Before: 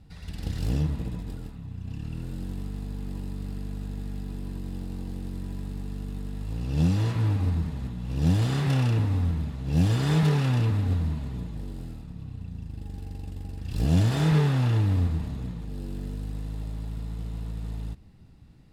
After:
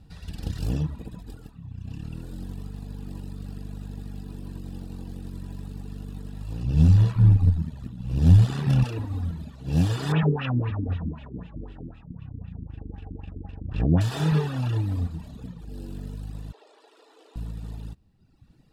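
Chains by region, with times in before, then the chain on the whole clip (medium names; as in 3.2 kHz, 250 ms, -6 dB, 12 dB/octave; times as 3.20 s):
6.63–8.84 s: peaking EQ 98 Hz +13 dB 1.1 oct + AM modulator 77 Hz, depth 35%
10.12–14.01 s: peaking EQ 4.4 kHz -7 dB 0.26 oct + LFO low-pass sine 3.9 Hz 300–2900 Hz
16.52–17.36 s: steep high-pass 340 Hz 48 dB/octave + distance through air 54 m
whole clip: band-stop 2.1 kHz, Q 7.9; reverb removal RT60 1.4 s; trim +1.5 dB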